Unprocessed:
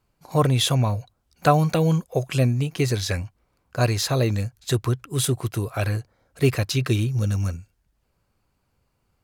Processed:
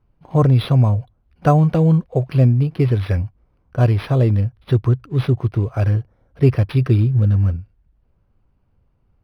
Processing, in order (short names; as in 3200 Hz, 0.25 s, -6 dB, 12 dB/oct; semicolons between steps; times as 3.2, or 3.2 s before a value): tilt -2.5 dB/oct; decimation joined by straight lines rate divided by 6×